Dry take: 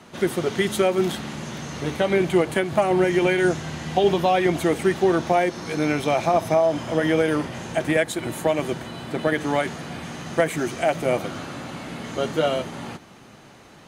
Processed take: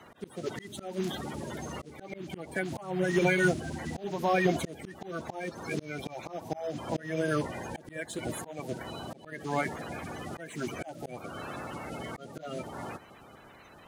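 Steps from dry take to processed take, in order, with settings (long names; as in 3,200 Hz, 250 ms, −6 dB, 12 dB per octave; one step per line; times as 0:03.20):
spectral magnitudes quantised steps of 30 dB
volume swells 419 ms
level −4.5 dB
IMA ADPCM 176 kbit/s 44,100 Hz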